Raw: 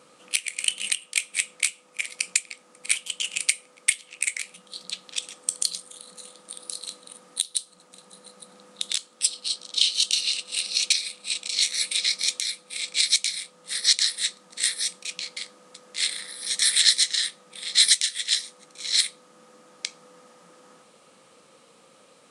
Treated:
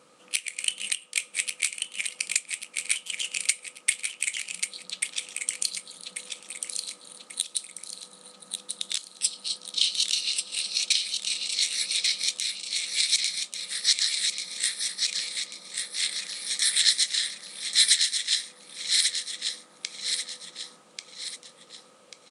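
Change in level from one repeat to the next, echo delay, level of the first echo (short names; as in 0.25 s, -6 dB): -7.5 dB, 1.139 s, -5.0 dB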